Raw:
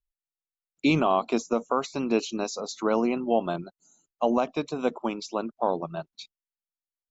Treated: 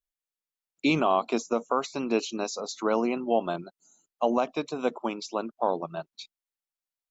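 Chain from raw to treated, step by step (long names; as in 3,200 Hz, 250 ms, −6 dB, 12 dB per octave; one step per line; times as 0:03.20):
low-shelf EQ 150 Hz −9.5 dB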